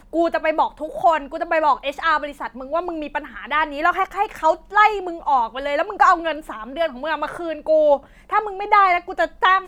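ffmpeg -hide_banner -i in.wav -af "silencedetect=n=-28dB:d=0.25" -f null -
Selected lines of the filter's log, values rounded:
silence_start: 7.97
silence_end: 8.32 | silence_duration: 0.34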